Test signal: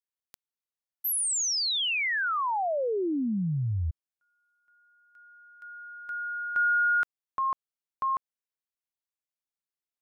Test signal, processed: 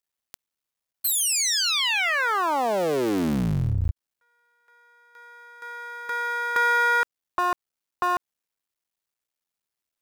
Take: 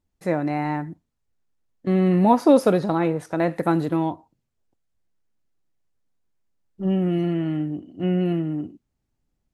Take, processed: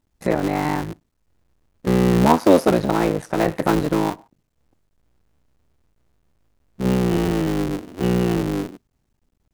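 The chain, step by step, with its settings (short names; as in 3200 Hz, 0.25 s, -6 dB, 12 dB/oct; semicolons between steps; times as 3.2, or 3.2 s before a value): cycle switcher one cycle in 3, muted; in parallel at +1 dB: compressor, threshold -32 dBFS; on the sum: gain +2 dB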